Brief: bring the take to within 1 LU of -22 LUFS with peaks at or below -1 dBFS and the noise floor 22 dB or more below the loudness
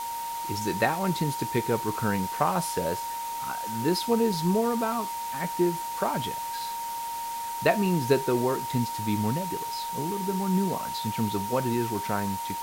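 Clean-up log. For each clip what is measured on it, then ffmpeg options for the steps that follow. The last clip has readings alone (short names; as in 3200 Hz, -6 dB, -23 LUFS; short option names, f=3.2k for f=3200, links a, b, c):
steady tone 930 Hz; tone level -31 dBFS; noise floor -34 dBFS; noise floor target -50 dBFS; loudness -28.0 LUFS; peak -9.0 dBFS; loudness target -22.0 LUFS
-> -af "bandreject=f=930:w=30"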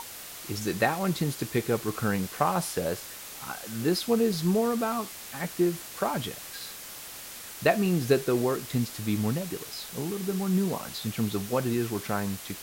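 steady tone none; noise floor -42 dBFS; noise floor target -51 dBFS
-> -af "afftdn=nr=9:nf=-42"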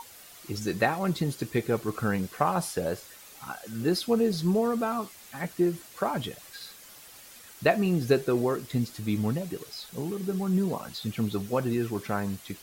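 noise floor -50 dBFS; noise floor target -51 dBFS
-> -af "afftdn=nr=6:nf=-50"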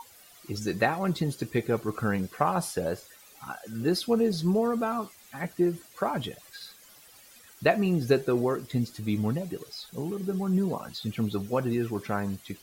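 noise floor -54 dBFS; loudness -29.0 LUFS; peak -9.5 dBFS; loudness target -22.0 LUFS
-> -af "volume=7dB"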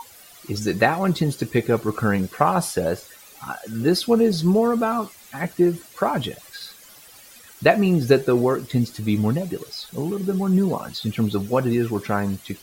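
loudness -22.0 LUFS; peak -2.5 dBFS; noise floor -47 dBFS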